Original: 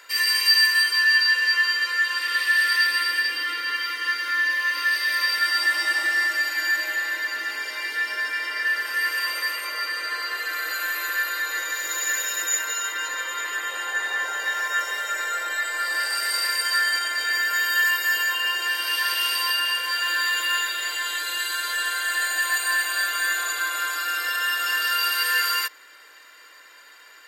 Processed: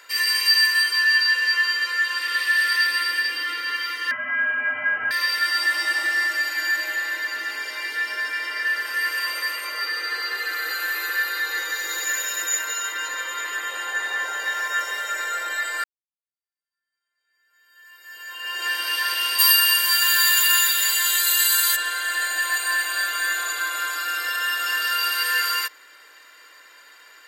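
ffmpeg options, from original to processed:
-filter_complex "[0:a]asettb=1/sr,asplit=3[a][b][c];[a]atrim=end=4.114[d];[b]atrim=start=4.11:end=5.11,asetpts=PTS-STARTPTS,afade=t=in:d=0.004:c=qsin,afade=t=out:st=0.996:d=0.004:c=qsin,lowpass=f=2.9k:t=q:w=0.5098,lowpass=f=2.9k:t=q:w=0.6013,lowpass=f=2.9k:t=q:w=0.9,lowpass=f=2.9k:t=q:w=2.563,afreqshift=-3400[e];[c]atrim=start=5.106[f];[d][e]acrossfade=d=0.004:c1=hsin:c2=qsin[g];[g][f]acrossfade=d=0.004:c1=qsin:c2=hsin,asettb=1/sr,asplit=3[h][i][j];[h]atrim=end=9.814[k];[i]atrim=start=9.81:end=12.05,asetpts=PTS-STARTPTS,afade=t=in:d=0.004:c=qsin,afade=t=out:st=2.236:d=0.004:c=qsin,aecho=1:1:2.4:0.49,atrim=end_sample=98784[l];[j]atrim=start=12.046[m];[k][l]acrossfade=d=0.004:c1=hsin:c2=qsin[n];[n][m]acrossfade=d=0.004:c1=qsin:c2=hsin,asplit=3[o][p][q];[o]afade=t=out:st=19.38:d=0.02[r];[p]aemphasis=mode=production:type=riaa,afade=t=in:st=19.38:d=0.02,afade=t=out:st=21.75:d=0.02[s];[q]afade=t=in:st=21.75:d=0.02[t];[r][s][t]amix=inputs=3:normalize=0,asplit=2[u][v];[u]atrim=end=15.84,asetpts=PTS-STARTPTS,afade=t=out:st=15.836:d=0.004:c=hsin[w];[v]atrim=start=15.84,asetpts=PTS-STARTPTS,afade=t=in:d=2.82:c=exp[x];[w][x]concat=n=2:v=0:a=1"

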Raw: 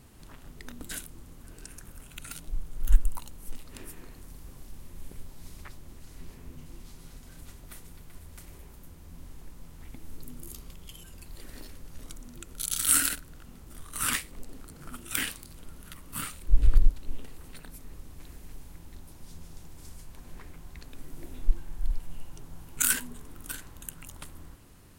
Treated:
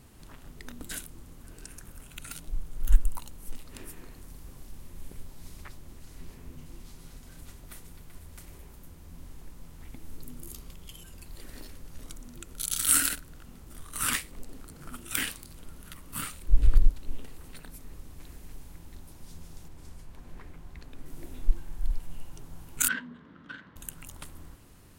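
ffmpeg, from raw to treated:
-filter_complex "[0:a]asettb=1/sr,asplit=3[a][b][c];[a]atrim=end=19.684[d];[b]atrim=start=19.68:end=21.06,asetpts=PTS-STARTPTS,afade=t=in:d=0.004:c=qsin,afade=t=out:st=1.376:d=0.004:c=qsin,highshelf=f=4.1k:g=-8.5[e];[c]atrim=start=21.056[f];[d][e]acrossfade=d=0.004:c1=hsin:c2=qsin[g];[g][f]acrossfade=d=0.004:c1=qsin:c2=hsin,asettb=1/sr,asplit=3[h][i][j];[h]atrim=end=22.884[k];[i]atrim=start=22.88:end=23.76,asetpts=PTS-STARTPTS,afade=t=in:d=0.004:c=qsin,afade=t=out:st=0.876:d=0.004:c=qsin,highpass=170,equalizer=f=200:t=q:w=4:g=7,equalizer=f=390:t=q:w=4:g=-7,equalizer=f=770:t=q:w=4:g=-9,equalizer=f=1.6k:t=q:w=4:g=4,equalizer=f=2.5k:t=q:w=4:g=-8,lowpass=f=3.2k:w=0.5412,lowpass=f=3.2k:w=1.3066[l];[j]atrim=start=23.756[m];[k][l]acrossfade=d=0.004:c1=hsin:c2=qsin[n];[n][m]acrossfade=d=0.004:c1=qsin:c2=hsin"

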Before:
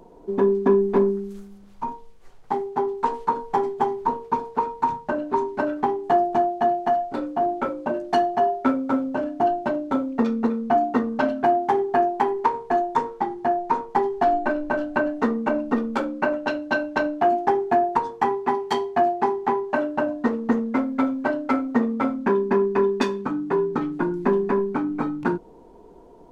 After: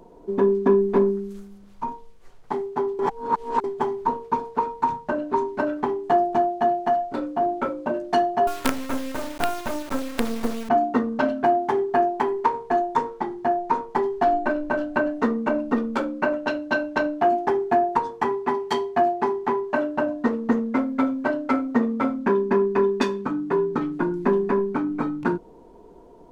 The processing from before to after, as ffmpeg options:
-filter_complex "[0:a]asettb=1/sr,asplit=3[a][b][c];[a]atrim=end=8.474[d];[b]atrim=start=8.47:end=10.69,asetpts=PTS-STARTPTS,afade=t=in:d=0.004:c=qsin,afade=t=out:st=2.216:d=0.004:c=qsin,acrusher=bits=3:dc=4:mix=0:aa=0.000001[e];[c]atrim=start=10.686[f];[d][e]acrossfade=d=0.004:c1=hsin:c2=qsin[g];[g][f]acrossfade=d=0.004:c1=qsin:c2=hsin,asplit=3[h][i][j];[h]atrim=end=2.992[k];[i]atrim=start=2.988:end=3.642,asetpts=PTS-STARTPTS,areverse[l];[j]atrim=start=3.638[m];[k][l]acrossfade=d=0.004:c1=hsin:c2=hsin[n];[n][m]acrossfade=d=0.004:c1=hsin:c2=hsin,bandreject=f=800:w=16"

